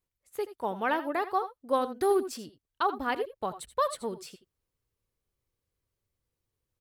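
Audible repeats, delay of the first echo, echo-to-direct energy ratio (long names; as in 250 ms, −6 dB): 1, 78 ms, −13.0 dB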